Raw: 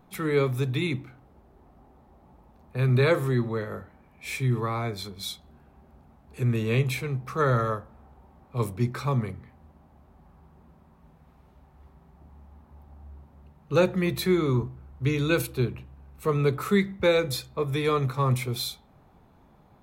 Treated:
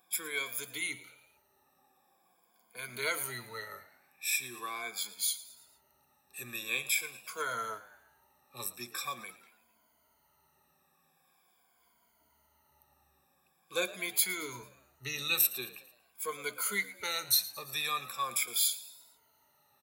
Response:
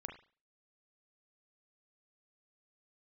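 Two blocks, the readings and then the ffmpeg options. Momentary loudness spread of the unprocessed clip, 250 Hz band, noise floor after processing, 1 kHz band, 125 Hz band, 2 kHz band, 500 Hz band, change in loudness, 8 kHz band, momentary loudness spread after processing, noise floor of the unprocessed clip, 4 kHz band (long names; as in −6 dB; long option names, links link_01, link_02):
12 LU, −22.5 dB, −72 dBFS, −7.5 dB, −30.0 dB, −2.5 dB, −17.5 dB, −6.5 dB, +8.5 dB, 17 LU, −58 dBFS, +0.5 dB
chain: -filter_complex "[0:a]afftfilt=real='re*pow(10,18/40*sin(2*PI*(1.8*log(max(b,1)*sr/1024/100)/log(2)-(-0.44)*(pts-256)/sr)))':imag='im*pow(10,18/40*sin(2*PI*(1.8*log(max(b,1)*sr/1024/100)/log(2)-(-0.44)*(pts-256)/sr)))':win_size=1024:overlap=0.75,aderivative,asplit=5[link_01][link_02][link_03][link_04][link_05];[link_02]adelay=112,afreqshift=76,volume=-17dB[link_06];[link_03]adelay=224,afreqshift=152,volume=-23dB[link_07];[link_04]adelay=336,afreqshift=228,volume=-29dB[link_08];[link_05]adelay=448,afreqshift=304,volume=-35.1dB[link_09];[link_01][link_06][link_07][link_08][link_09]amix=inputs=5:normalize=0,volume=4dB"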